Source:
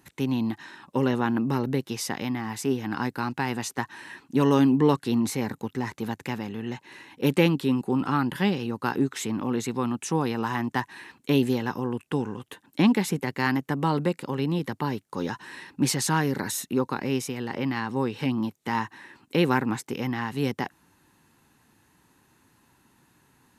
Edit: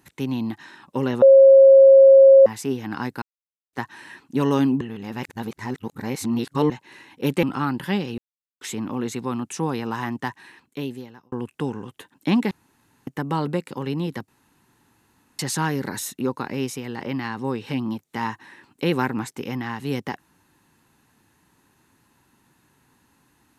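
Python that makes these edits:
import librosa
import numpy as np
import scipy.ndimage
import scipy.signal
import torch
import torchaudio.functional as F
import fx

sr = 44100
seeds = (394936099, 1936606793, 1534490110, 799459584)

y = fx.edit(x, sr, fx.bleep(start_s=1.22, length_s=1.24, hz=541.0, db=-6.5),
    fx.silence(start_s=3.22, length_s=0.51),
    fx.reverse_span(start_s=4.81, length_s=1.89),
    fx.cut(start_s=7.43, length_s=0.52),
    fx.silence(start_s=8.7, length_s=0.43),
    fx.fade_out_span(start_s=10.59, length_s=1.25),
    fx.room_tone_fill(start_s=13.03, length_s=0.56),
    fx.room_tone_fill(start_s=14.8, length_s=1.11), tone=tone)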